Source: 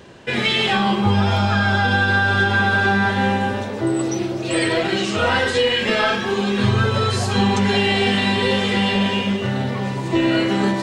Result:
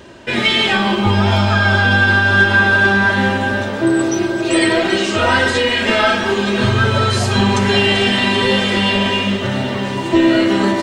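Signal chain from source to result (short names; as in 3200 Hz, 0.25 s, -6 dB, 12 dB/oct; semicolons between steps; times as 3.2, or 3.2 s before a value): comb 3.2 ms, depth 40%; echo with dull and thin repeats by turns 0.195 s, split 2000 Hz, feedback 88%, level -13.5 dB; gain +3.5 dB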